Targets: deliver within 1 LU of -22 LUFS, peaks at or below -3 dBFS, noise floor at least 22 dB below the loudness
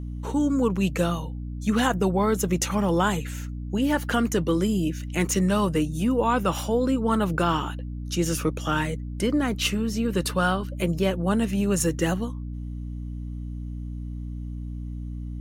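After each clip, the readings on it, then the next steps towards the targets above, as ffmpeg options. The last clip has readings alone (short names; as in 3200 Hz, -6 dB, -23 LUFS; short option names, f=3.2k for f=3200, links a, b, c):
hum 60 Hz; harmonics up to 300 Hz; hum level -30 dBFS; loudness -25.5 LUFS; peak -8.5 dBFS; loudness target -22.0 LUFS
-> -af "bandreject=f=60:t=h:w=4,bandreject=f=120:t=h:w=4,bandreject=f=180:t=h:w=4,bandreject=f=240:t=h:w=4,bandreject=f=300:t=h:w=4"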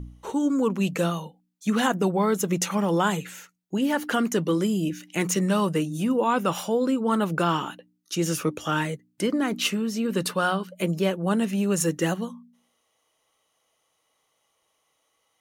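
hum none; loudness -25.5 LUFS; peak -9.5 dBFS; loudness target -22.0 LUFS
-> -af "volume=3.5dB"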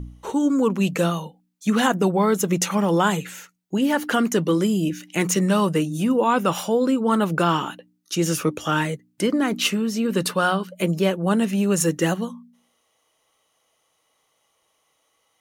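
loudness -22.0 LUFS; peak -6.0 dBFS; noise floor -69 dBFS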